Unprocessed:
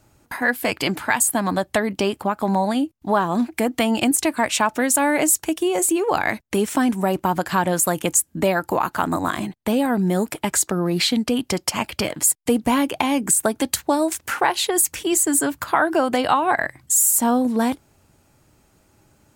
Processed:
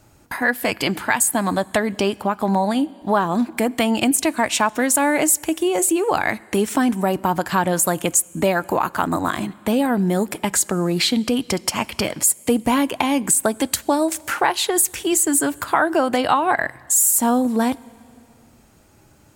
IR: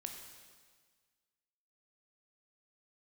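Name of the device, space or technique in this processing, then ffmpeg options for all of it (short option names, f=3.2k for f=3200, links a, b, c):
ducked reverb: -filter_complex "[0:a]asplit=3[a][b][c];[1:a]atrim=start_sample=2205[d];[b][d]afir=irnorm=-1:irlink=0[e];[c]apad=whole_len=853390[f];[e][f]sidechaincompress=threshold=-32dB:ratio=4:attack=5.3:release=765,volume=0dB[g];[a][g]amix=inputs=2:normalize=0"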